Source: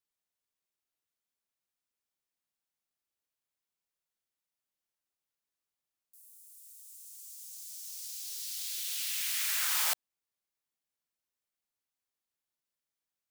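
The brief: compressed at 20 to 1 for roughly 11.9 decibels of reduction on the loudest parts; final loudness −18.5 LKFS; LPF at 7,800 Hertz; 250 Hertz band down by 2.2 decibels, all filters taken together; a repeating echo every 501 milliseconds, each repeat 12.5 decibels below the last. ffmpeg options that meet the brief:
ffmpeg -i in.wav -af "lowpass=7800,equalizer=frequency=250:width_type=o:gain=-3.5,acompressor=threshold=-42dB:ratio=20,aecho=1:1:501|1002|1503:0.237|0.0569|0.0137,volume=27dB" out.wav

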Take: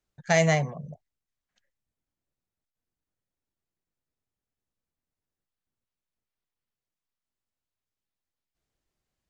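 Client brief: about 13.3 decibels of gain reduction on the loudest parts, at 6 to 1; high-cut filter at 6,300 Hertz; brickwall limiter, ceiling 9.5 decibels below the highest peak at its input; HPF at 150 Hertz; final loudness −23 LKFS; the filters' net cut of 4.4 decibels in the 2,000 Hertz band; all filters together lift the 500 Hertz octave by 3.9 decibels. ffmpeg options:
ffmpeg -i in.wav -af "highpass=150,lowpass=6300,equalizer=frequency=500:width_type=o:gain=6,equalizer=frequency=2000:width_type=o:gain=-5,acompressor=threshold=-30dB:ratio=6,volume=15.5dB,alimiter=limit=-10dB:level=0:latency=1" out.wav

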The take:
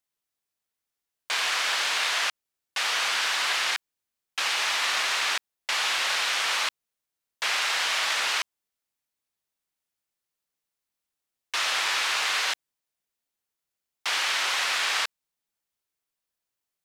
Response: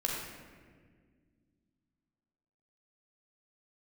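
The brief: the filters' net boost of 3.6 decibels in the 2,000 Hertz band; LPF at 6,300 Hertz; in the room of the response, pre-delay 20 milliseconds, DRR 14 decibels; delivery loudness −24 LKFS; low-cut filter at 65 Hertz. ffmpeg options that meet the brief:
-filter_complex "[0:a]highpass=65,lowpass=6300,equalizer=frequency=2000:width_type=o:gain=4.5,asplit=2[link_01][link_02];[1:a]atrim=start_sample=2205,adelay=20[link_03];[link_02][link_03]afir=irnorm=-1:irlink=0,volume=-19.5dB[link_04];[link_01][link_04]amix=inputs=2:normalize=0,volume=-1dB"

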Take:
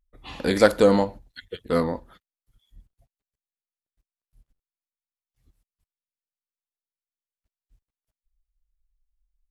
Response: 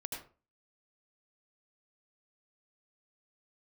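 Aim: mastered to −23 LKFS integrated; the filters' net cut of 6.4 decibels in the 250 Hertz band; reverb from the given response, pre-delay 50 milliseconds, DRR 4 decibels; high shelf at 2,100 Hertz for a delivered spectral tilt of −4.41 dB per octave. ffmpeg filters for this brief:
-filter_complex "[0:a]equalizer=frequency=250:width_type=o:gain=-8.5,highshelf=frequency=2100:gain=-4,asplit=2[link_01][link_02];[1:a]atrim=start_sample=2205,adelay=50[link_03];[link_02][link_03]afir=irnorm=-1:irlink=0,volume=-3.5dB[link_04];[link_01][link_04]amix=inputs=2:normalize=0,volume=0.5dB"

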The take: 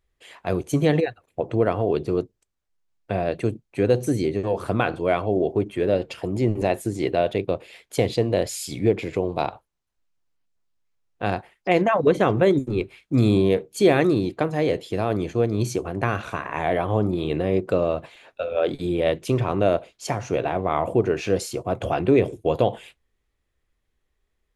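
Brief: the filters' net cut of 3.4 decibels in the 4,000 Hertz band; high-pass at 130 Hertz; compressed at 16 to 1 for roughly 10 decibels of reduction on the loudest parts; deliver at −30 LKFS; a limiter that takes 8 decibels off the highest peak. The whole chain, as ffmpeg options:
ffmpeg -i in.wav -af "highpass=130,equalizer=frequency=4000:width_type=o:gain=-4.5,acompressor=threshold=-22dB:ratio=16,volume=1dB,alimiter=limit=-17.5dB:level=0:latency=1" out.wav

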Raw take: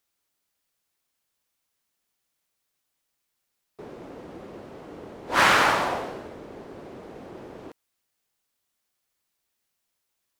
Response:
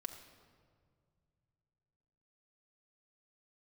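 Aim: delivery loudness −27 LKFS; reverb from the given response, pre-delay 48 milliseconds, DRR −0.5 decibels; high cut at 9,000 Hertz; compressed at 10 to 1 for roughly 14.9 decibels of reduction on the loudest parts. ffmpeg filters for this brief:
-filter_complex "[0:a]lowpass=9000,acompressor=threshold=-30dB:ratio=10,asplit=2[link_01][link_02];[1:a]atrim=start_sample=2205,adelay=48[link_03];[link_02][link_03]afir=irnorm=-1:irlink=0,volume=3dB[link_04];[link_01][link_04]amix=inputs=2:normalize=0,volume=8dB"

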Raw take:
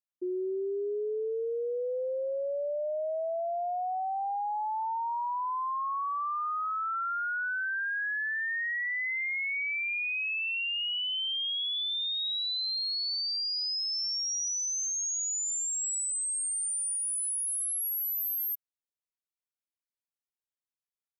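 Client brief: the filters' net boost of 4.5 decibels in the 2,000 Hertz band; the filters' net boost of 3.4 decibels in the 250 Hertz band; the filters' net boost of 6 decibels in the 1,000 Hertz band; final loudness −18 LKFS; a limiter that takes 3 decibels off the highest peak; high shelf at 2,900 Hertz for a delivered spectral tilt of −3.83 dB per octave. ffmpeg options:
ffmpeg -i in.wav -af "equalizer=frequency=250:width_type=o:gain=6.5,equalizer=frequency=1000:width_type=o:gain=6.5,equalizer=frequency=2000:width_type=o:gain=6,highshelf=frequency=2900:gain=-6.5,volume=11.5dB,alimiter=limit=-13.5dB:level=0:latency=1" out.wav

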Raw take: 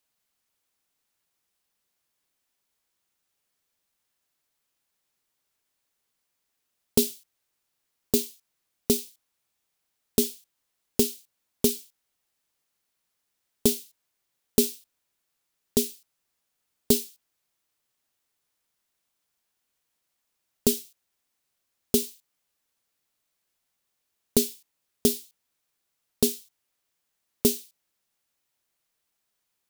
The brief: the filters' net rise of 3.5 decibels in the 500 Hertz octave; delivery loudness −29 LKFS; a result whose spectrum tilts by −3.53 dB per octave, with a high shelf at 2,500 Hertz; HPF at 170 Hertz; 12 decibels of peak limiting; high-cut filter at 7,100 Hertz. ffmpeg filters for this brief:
ffmpeg -i in.wav -af "highpass=170,lowpass=7100,equalizer=frequency=500:width_type=o:gain=5,highshelf=frequency=2500:gain=-7,volume=7dB,alimiter=limit=-11.5dB:level=0:latency=1" out.wav

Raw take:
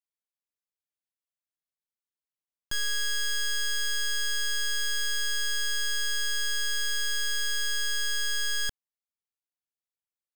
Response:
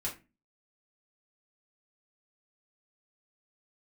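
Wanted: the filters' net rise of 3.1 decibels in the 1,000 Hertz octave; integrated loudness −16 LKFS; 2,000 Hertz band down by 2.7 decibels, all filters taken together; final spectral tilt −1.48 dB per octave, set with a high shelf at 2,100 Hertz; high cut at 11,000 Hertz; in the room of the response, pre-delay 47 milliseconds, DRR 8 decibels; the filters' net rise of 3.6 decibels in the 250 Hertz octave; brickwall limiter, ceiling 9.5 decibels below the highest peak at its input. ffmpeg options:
-filter_complex "[0:a]lowpass=11000,equalizer=frequency=250:width_type=o:gain=4.5,equalizer=frequency=1000:width_type=o:gain=6.5,equalizer=frequency=2000:width_type=o:gain=-4.5,highshelf=frequency=2100:gain=-3.5,alimiter=level_in=8.5dB:limit=-24dB:level=0:latency=1,volume=-8.5dB,asplit=2[link_01][link_02];[1:a]atrim=start_sample=2205,adelay=47[link_03];[link_02][link_03]afir=irnorm=-1:irlink=0,volume=-10dB[link_04];[link_01][link_04]amix=inputs=2:normalize=0,volume=22dB"

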